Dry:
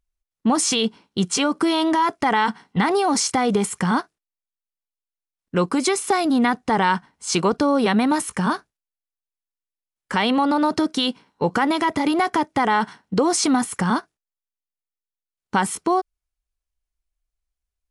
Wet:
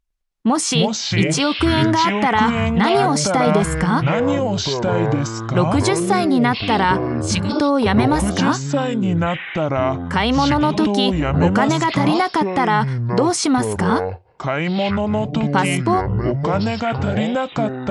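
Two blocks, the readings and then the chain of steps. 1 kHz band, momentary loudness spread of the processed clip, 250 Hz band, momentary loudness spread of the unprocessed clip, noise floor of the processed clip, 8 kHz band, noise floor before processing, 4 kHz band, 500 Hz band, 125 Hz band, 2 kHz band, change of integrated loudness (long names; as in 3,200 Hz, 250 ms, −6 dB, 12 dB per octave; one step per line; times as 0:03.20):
+3.0 dB, 5 LU, +4.5 dB, 6 LU, −31 dBFS, +0.5 dB, below −85 dBFS, +3.5 dB, +5.5 dB, +12.5 dB, +4.0 dB, +3.0 dB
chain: healed spectral selection 0:07.11–0:07.56, 250–1,500 Hz both
high-shelf EQ 9,400 Hz −7 dB
delay with pitch and tempo change per echo 105 ms, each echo −6 semitones, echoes 3
level +2 dB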